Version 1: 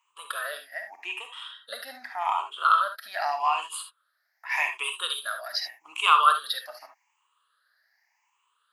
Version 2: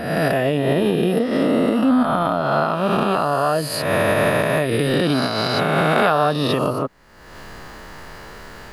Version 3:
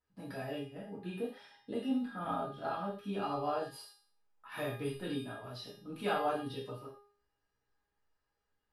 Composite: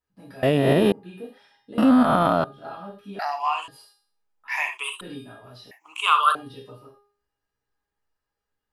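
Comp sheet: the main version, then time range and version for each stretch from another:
3
0.43–0.92 s: from 2
1.78–2.44 s: from 2
3.19–3.68 s: from 1
4.48–5.01 s: from 1
5.71–6.35 s: from 1

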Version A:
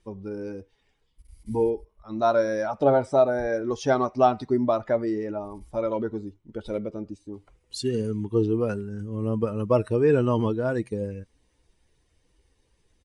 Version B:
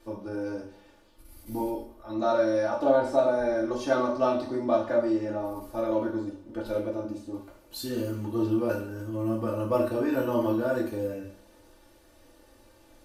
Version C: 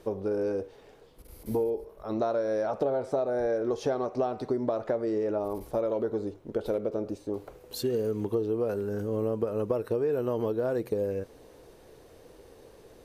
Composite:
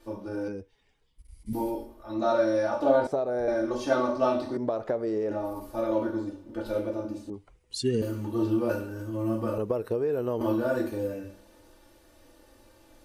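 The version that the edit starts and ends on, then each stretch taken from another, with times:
B
0.48–1.53 s: from A
3.07–3.48 s: from C
4.57–5.31 s: from C
7.30–8.02 s: from A
9.58–10.41 s: from C

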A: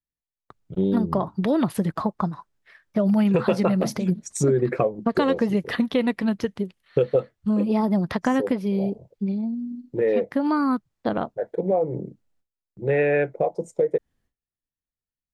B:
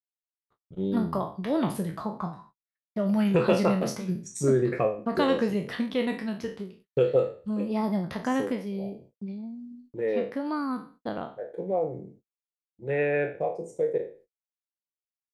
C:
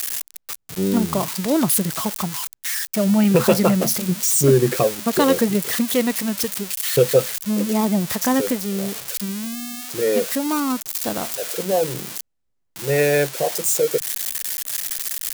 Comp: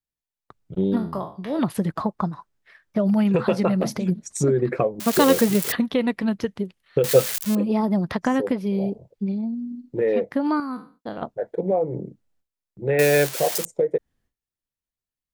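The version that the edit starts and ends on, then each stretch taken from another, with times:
A
0.97–1.59 s: from B
5.00–5.72 s: from C
7.04–7.55 s: from C
10.60–11.22 s: from B
12.99–13.65 s: from C

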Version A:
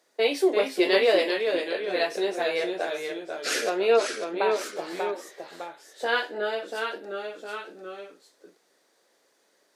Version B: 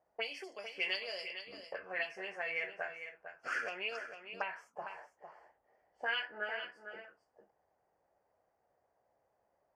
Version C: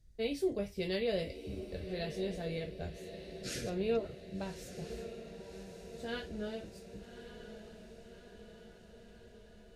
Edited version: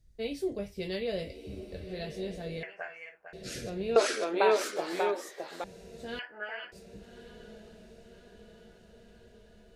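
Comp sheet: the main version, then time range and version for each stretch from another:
C
2.63–3.33 s: from B
3.96–5.64 s: from A
6.19–6.72 s: from B

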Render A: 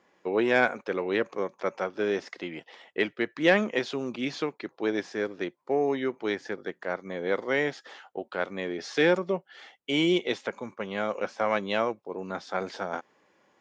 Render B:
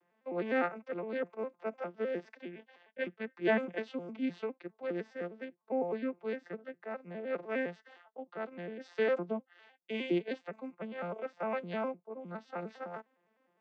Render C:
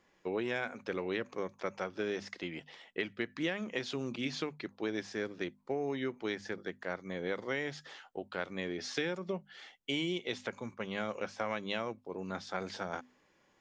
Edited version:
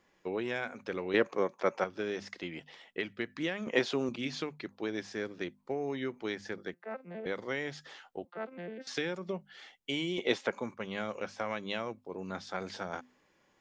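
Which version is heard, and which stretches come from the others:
C
1.14–1.84 s: from A
3.67–4.09 s: from A
6.74–7.26 s: from B
8.25–8.87 s: from B
10.18–10.74 s: from A

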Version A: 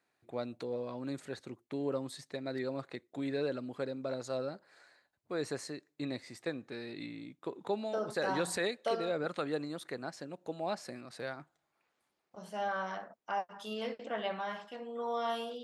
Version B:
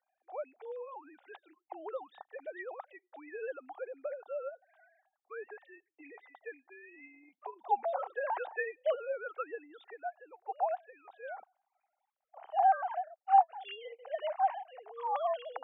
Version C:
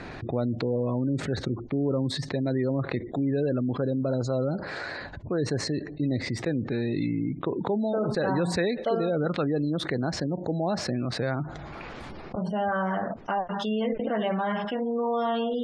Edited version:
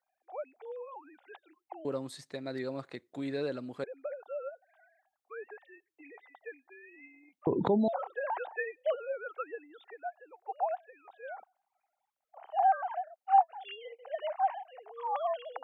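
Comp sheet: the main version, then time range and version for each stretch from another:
B
1.85–3.84 s: from A
7.47–7.88 s: from C

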